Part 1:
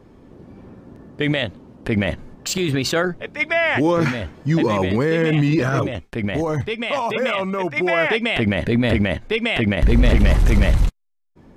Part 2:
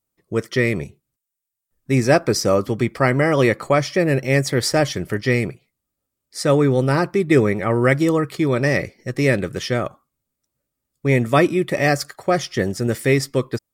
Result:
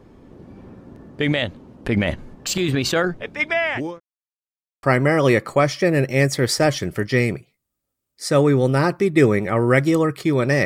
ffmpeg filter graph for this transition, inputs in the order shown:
ffmpeg -i cue0.wav -i cue1.wav -filter_complex "[0:a]apad=whole_dur=10.65,atrim=end=10.65,asplit=2[link_01][link_02];[link_01]atrim=end=4,asetpts=PTS-STARTPTS,afade=type=out:start_time=3.28:duration=0.72:curve=qsin[link_03];[link_02]atrim=start=4:end=4.83,asetpts=PTS-STARTPTS,volume=0[link_04];[1:a]atrim=start=2.97:end=8.79,asetpts=PTS-STARTPTS,afade=type=in:duration=0.004:curve=hsin[link_05];[link_03][link_04][link_05]concat=n=3:v=0:a=1" out.wav

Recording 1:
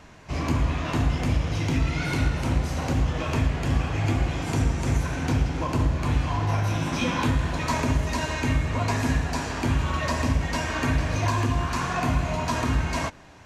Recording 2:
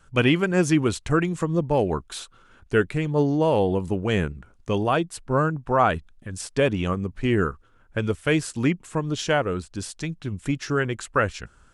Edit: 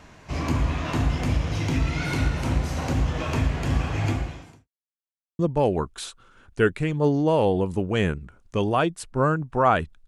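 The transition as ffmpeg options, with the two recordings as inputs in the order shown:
ffmpeg -i cue0.wav -i cue1.wav -filter_complex "[0:a]apad=whole_dur=10.07,atrim=end=10.07,asplit=2[link_01][link_02];[link_01]atrim=end=4.68,asetpts=PTS-STARTPTS,afade=type=out:start_time=4.08:duration=0.6:curve=qua[link_03];[link_02]atrim=start=4.68:end=5.39,asetpts=PTS-STARTPTS,volume=0[link_04];[1:a]atrim=start=1.53:end=6.21,asetpts=PTS-STARTPTS,afade=type=in:duration=0.004:curve=hsin[link_05];[link_03][link_04][link_05]concat=n=3:v=0:a=1" out.wav

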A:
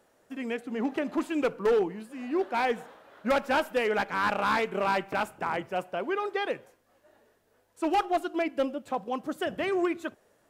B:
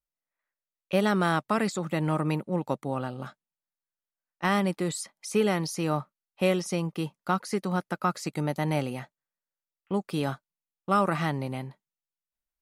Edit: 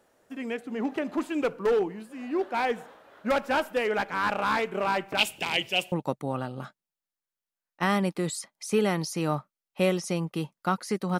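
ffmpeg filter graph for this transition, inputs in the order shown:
ffmpeg -i cue0.wav -i cue1.wav -filter_complex "[0:a]asplit=3[link_01][link_02][link_03];[link_01]afade=type=out:start_time=5.17:duration=0.02[link_04];[link_02]highshelf=frequency=2000:width_type=q:width=3:gain=13,afade=type=in:start_time=5.17:duration=0.02,afade=type=out:start_time=5.92:duration=0.02[link_05];[link_03]afade=type=in:start_time=5.92:duration=0.02[link_06];[link_04][link_05][link_06]amix=inputs=3:normalize=0,apad=whole_dur=11.19,atrim=end=11.19,atrim=end=5.922[link_07];[1:a]atrim=start=2.538:end=7.81[link_08];[link_07][link_08]acrossfade=duration=0.004:curve1=hsin:curve2=hsin" out.wav

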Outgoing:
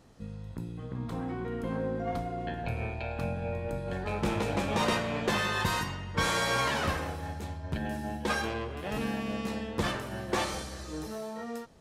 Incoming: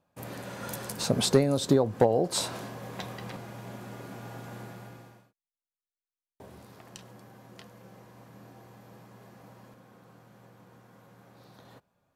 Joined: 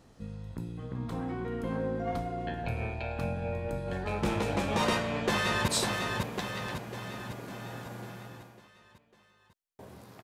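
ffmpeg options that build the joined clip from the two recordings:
ffmpeg -i cue0.wav -i cue1.wav -filter_complex "[0:a]apad=whole_dur=10.23,atrim=end=10.23,atrim=end=5.682[link_01];[1:a]atrim=start=2.288:end=6.84[link_02];[link_01][link_02]acrossfade=duration=0.004:curve1=hsin:curve2=hsin,asplit=2[link_03][link_04];[link_04]afade=type=in:start_time=4.9:duration=0.01,afade=type=out:start_time=5.68:duration=0.01,aecho=0:1:550|1100|1650|2200|2750|3300|3850:0.630957|0.347027|0.190865|0.104976|0.0577365|0.0317551|0.0174653[link_05];[link_03][link_05]amix=inputs=2:normalize=0" out.wav

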